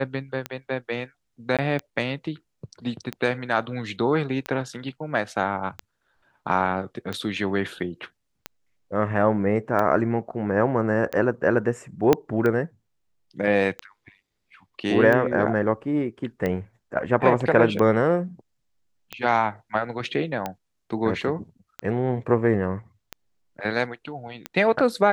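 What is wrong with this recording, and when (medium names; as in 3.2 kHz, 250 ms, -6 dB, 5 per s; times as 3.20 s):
tick 45 rpm -14 dBFS
1.57–1.59 s: dropout 17 ms
12.13 s: pop -5 dBFS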